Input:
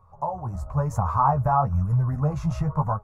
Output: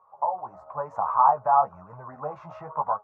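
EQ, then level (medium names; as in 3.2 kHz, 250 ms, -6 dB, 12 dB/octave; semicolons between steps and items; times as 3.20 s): high-pass 430 Hz 12 dB/octave; low-pass 2.2 kHz 12 dB/octave; peaking EQ 840 Hz +8.5 dB 1.5 oct; -5.0 dB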